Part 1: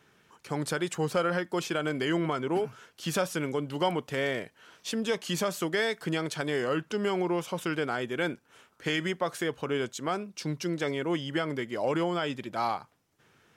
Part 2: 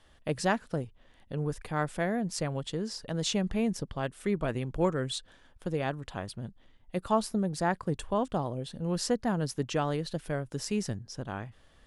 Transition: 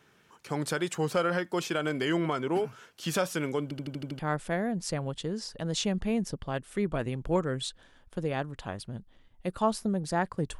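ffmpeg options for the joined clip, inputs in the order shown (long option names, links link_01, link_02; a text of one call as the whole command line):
ffmpeg -i cue0.wav -i cue1.wav -filter_complex "[0:a]apad=whole_dur=10.59,atrim=end=10.59,asplit=7[link_01][link_02][link_03][link_04][link_05][link_06][link_07];[link_01]atrim=end=3.712[link_08];[link_02]atrim=start=3.628:end=3.712[link_09];[link_03]atrim=start=3.628:end=3.712[link_10];[link_04]atrim=start=3.628:end=3.712[link_11];[link_05]atrim=start=3.628:end=3.712[link_12];[link_06]atrim=start=3.628:end=3.712[link_13];[link_07]atrim=start=3.628:end=3.712[link_14];[1:a]atrim=start=1.678:end=8.08[link_15];[link_08][link_09]acrossfade=duration=0.004:curve1=hsin:curve2=hsin[link_16];[link_16][link_10]acrossfade=duration=0.004:curve1=hsin:curve2=hsin[link_17];[link_17][link_11]acrossfade=duration=0.004:curve1=hsin:curve2=hsin[link_18];[link_18][link_12]acrossfade=duration=0.004:curve1=hsin:curve2=hsin[link_19];[link_19][link_13]acrossfade=duration=0.004:curve1=hsin:curve2=hsin[link_20];[link_20][link_14]acrossfade=duration=0.004:curve1=hsin:curve2=hsin[link_21];[link_21][link_15]acrossfade=duration=0.004:curve1=hsin:curve2=hsin" out.wav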